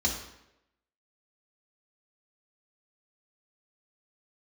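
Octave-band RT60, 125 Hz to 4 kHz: 0.80 s, 0.85 s, 0.95 s, 0.80 s, 0.80 s, 0.70 s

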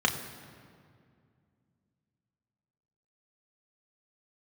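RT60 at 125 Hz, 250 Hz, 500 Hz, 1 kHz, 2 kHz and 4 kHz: 3.2 s, 3.2 s, 2.4 s, 2.1 s, 1.8 s, 1.4 s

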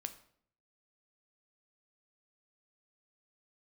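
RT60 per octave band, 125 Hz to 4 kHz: 0.80 s, 0.75 s, 0.65 s, 0.55 s, 0.50 s, 0.45 s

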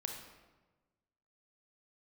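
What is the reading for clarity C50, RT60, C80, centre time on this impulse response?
4.0 dB, 1.2 s, 6.5 dB, 40 ms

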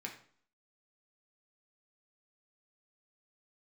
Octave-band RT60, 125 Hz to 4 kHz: 0.55 s, 0.60 s, 0.50 s, 0.55 s, 0.45 s, 0.45 s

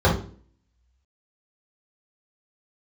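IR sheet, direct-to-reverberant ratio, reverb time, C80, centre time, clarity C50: -6.5 dB, 0.45 s, 12.0 dB, 28 ms, 6.0 dB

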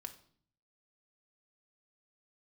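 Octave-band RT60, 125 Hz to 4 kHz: 0.90 s, 0.80 s, 0.55 s, 0.50 s, 0.45 s, 0.50 s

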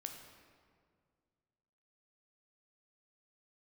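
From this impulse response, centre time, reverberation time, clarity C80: 42 ms, 2.0 s, 7.0 dB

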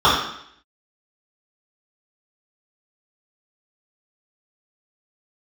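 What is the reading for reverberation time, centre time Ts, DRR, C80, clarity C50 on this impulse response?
0.70 s, 50 ms, -10.5 dB, 6.0 dB, 2.5 dB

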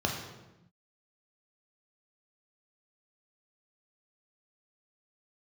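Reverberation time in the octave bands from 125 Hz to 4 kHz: 1.5 s, 1.4 s, 1.0 s, 0.90 s, 0.85 s, 0.75 s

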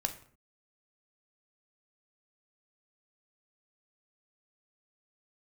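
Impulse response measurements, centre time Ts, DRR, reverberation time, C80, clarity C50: 9 ms, 5.5 dB, 0.55 s, 16.0 dB, 12.0 dB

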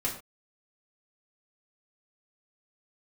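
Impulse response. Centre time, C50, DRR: 23 ms, 8.0 dB, -5.5 dB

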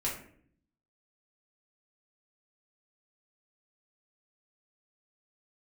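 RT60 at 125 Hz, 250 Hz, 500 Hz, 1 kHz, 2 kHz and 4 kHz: 1.0 s, 0.90 s, 0.65 s, 0.50 s, 0.50 s, 0.35 s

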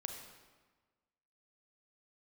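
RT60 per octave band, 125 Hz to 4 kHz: 1.5 s, 1.5 s, 1.4 s, 1.4 s, 1.2 s, 1.0 s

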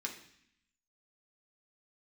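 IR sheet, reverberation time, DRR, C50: 0.65 s, -0.5 dB, 8.5 dB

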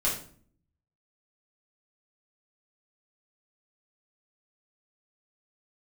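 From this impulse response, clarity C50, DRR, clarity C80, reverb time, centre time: 6.0 dB, -7.0 dB, 10.5 dB, 0.50 s, 31 ms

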